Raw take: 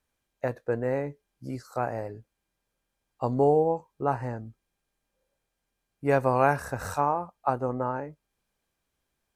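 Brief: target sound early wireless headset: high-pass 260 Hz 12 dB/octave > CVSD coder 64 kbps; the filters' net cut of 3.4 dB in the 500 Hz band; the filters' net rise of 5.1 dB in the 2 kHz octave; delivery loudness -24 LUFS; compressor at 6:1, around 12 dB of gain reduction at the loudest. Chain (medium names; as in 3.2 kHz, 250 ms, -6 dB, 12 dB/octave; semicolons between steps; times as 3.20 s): peaking EQ 500 Hz -4 dB; peaking EQ 2 kHz +7.5 dB; compression 6:1, threshold -31 dBFS; high-pass 260 Hz 12 dB/octave; CVSD coder 64 kbps; trim +14.5 dB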